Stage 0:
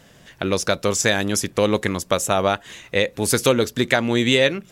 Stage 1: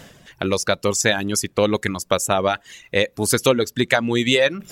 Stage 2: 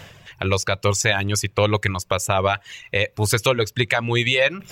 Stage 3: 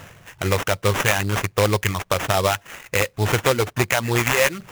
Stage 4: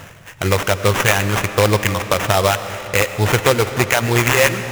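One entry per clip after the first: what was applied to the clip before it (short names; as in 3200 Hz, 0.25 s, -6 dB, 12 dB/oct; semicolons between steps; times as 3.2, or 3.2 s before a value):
reverb removal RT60 0.93 s; reverse; upward compressor, threshold -31 dBFS; reverse; gain +1 dB
fifteen-band EQ 100 Hz +10 dB, 250 Hz -9 dB, 1000 Hz +4 dB, 2500 Hz +7 dB, 10000 Hz -6 dB; limiter -6.5 dBFS, peak gain reduction 7.5 dB
sample-rate reducer 4500 Hz, jitter 20%
reverb RT60 3.9 s, pre-delay 50 ms, DRR 10 dB; gain +4 dB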